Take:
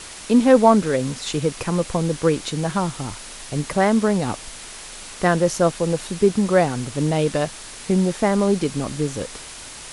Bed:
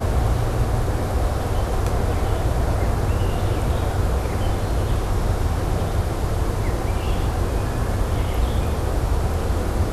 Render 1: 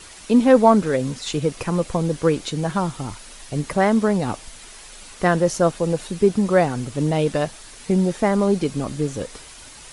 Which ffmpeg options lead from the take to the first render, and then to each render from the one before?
-af "afftdn=nr=7:nf=-38"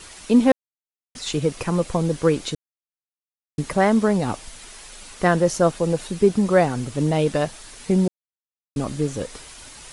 -filter_complex "[0:a]asplit=7[s0][s1][s2][s3][s4][s5][s6];[s0]atrim=end=0.52,asetpts=PTS-STARTPTS,afade=t=out:st=0.516:d=0.004:c=hsin[s7];[s1]atrim=start=0.52:end=1.15,asetpts=PTS-STARTPTS,volume=0[s8];[s2]atrim=start=1.15:end=2.55,asetpts=PTS-STARTPTS,afade=t=in:d=0.004:c=hsin,afade=t=out:st=1.396:d=0.004:c=hsin[s9];[s3]atrim=start=2.55:end=3.58,asetpts=PTS-STARTPTS,volume=0[s10];[s4]atrim=start=3.58:end=8.08,asetpts=PTS-STARTPTS,afade=t=in:d=0.004:c=hsin,afade=t=out:st=4.496:d=0.004:c=hsin[s11];[s5]atrim=start=8.08:end=8.76,asetpts=PTS-STARTPTS,volume=0[s12];[s6]atrim=start=8.76,asetpts=PTS-STARTPTS,afade=t=in:d=0.004:c=hsin[s13];[s7][s8][s9][s10][s11][s12][s13]concat=n=7:v=0:a=1"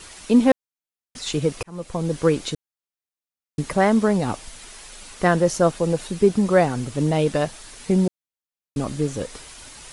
-filter_complex "[0:a]asplit=2[s0][s1];[s0]atrim=end=1.63,asetpts=PTS-STARTPTS,afade=t=out:st=1.626:d=0.004:c=hsin[s2];[s1]atrim=start=1.63,asetpts=PTS-STARTPTS,afade=t=in:d=0.56[s3];[s2][s3]concat=n=2:v=0:a=1"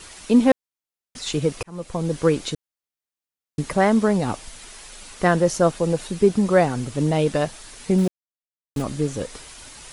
-filter_complex "[0:a]asplit=3[s0][s1][s2];[s0]afade=t=out:st=7.97:d=0.02[s3];[s1]aeval=exprs='val(0)*gte(abs(val(0)),0.0299)':c=same,afade=t=in:st=7.97:d=0.02,afade=t=out:st=8.81:d=0.02[s4];[s2]afade=t=in:st=8.81:d=0.02[s5];[s3][s4][s5]amix=inputs=3:normalize=0"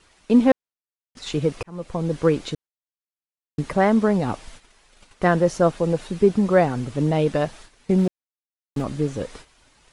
-af "aemphasis=mode=reproduction:type=50kf,agate=range=0.251:threshold=0.00891:ratio=16:detection=peak"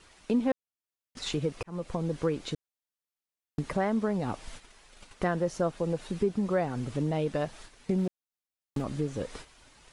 -af "acompressor=threshold=0.0224:ratio=2"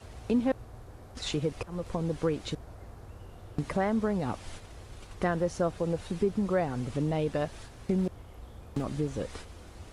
-filter_complex "[1:a]volume=0.0501[s0];[0:a][s0]amix=inputs=2:normalize=0"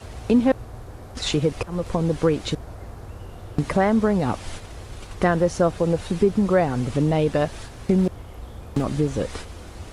-af "volume=2.82"

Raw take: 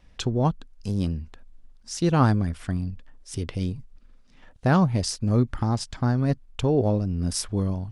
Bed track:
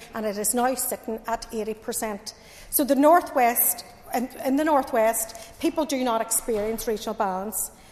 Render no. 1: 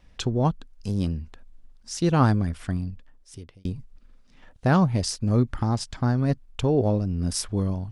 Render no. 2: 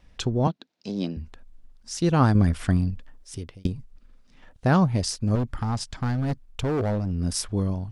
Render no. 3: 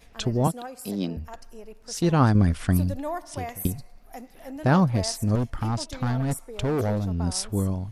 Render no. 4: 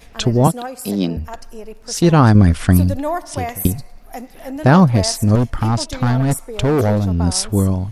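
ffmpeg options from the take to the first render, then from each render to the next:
-filter_complex "[0:a]asplit=2[s0][s1];[s0]atrim=end=3.65,asetpts=PTS-STARTPTS,afade=t=out:st=2.73:d=0.92[s2];[s1]atrim=start=3.65,asetpts=PTS-STARTPTS,afade=t=in:d=0.004:c=hsin[s3];[s2][s3]concat=n=2:v=0:a=1"
-filter_complex "[0:a]asettb=1/sr,asplit=3[s0][s1][s2];[s0]atrim=end=0.474[s3];[s1]atrim=start=0.47:end=1.17,asetpts=PTS-STARTPTS,afade=t=in:d=0.004:c=qsin,afade=t=out:st=0.696:d=0.004:c=qsin,highpass=f=180:w=0.5412,highpass=f=180:w=1.3066,equalizer=f=340:t=q:w=4:g=4,equalizer=f=660:t=q:w=4:g=6,equalizer=f=1200:t=q:w=4:g=-4,equalizer=f=2300:t=q:w=4:g=3,equalizer=f=3900:t=q:w=4:g=7,lowpass=f=6100:w=0.5412,lowpass=f=6100:w=1.3066[s4];[s2]atrim=start=1.166[s5];[s3][s4]acrossfade=d=0.004:c1=hsin:c2=qsin[s6];[s6][s5]acrossfade=d=0.004:c1=qsin:c2=hsin,asettb=1/sr,asplit=3[s7][s8][s9];[s7]atrim=end=2.354[s10];[s8]atrim=start=2.35:end=3.67,asetpts=PTS-STARTPTS,afade=t=in:d=0.004:c=qsin,afade=t=out:st=1.316:d=0.004:c=qsin,acontrast=56[s11];[s9]atrim=start=3.666[s12];[s10][s11]acrossfade=d=0.004:c1=hsin:c2=qsin[s13];[s13][s12]acrossfade=d=0.004:c1=qsin:c2=hsin,asettb=1/sr,asplit=3[s14][s15][s16];[s14]atrim=end=5.354[s17];[s15]atrim=start=5.35:end=7.15,asetpts=PTS-STARTPTS,afade=t=in:d=0.004:c=qsin,afade=t=out:st=1.796:d=0.004:c=qsin,volume=11.9,asoftclip=hard,volume=0.0841[s18];[s16]atrim=start=7.146[s19];[s17][s18]acrossfade=d=0.004:c1=hsin:c2=qsin[s20];[s20][s19]acrossfade=d=0.004:c1=qsin:c2=hsin"
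-filter_complex "[1:a]volume=0.178[s0];[0:a][s0]amix=inputs=2:normalize=0"
-af "volume=2.99,alimiter=limit=0.891:level=0:latency=1"

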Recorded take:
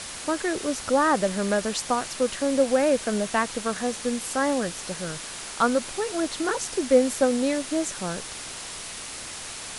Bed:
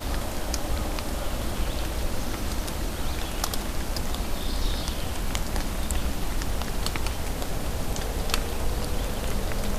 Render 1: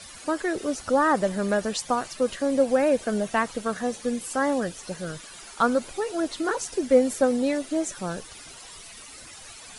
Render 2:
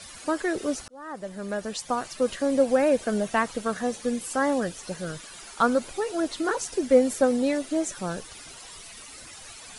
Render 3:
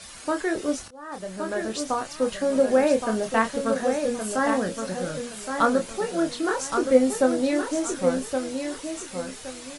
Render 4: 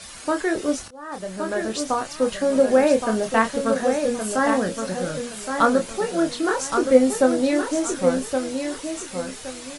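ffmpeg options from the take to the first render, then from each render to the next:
-af "afftdn=nr=13:nf=-37"
-filter_complex "[0:a]asplit=2[s0][s1];[s0]atrim=end=0.88,asetpts=PTS-STARTPTS,afade=t=out:st=0.876:d=0.004:c=hsin[s2];[s1]atrim=start=0.88,asetpts=PTS-STARTPTS,afade=t=in:d=1.4[s3];[s2][s3]concat=n=2:v=0:a=1"
-filter_complex "[0:a]asplit=2[s0][s1];[s1]adelay=27,volume=0.501[s2];[s0][s2]amix=inputs=2:normalize=0,asplit=2[s3][s4];[s4]aecho=0:1:1119|2238|3357:0.473|0.128|0.0345[s5];[s3][s5]amix=inputs=2:normalize=0"
-af "volume=1.41"

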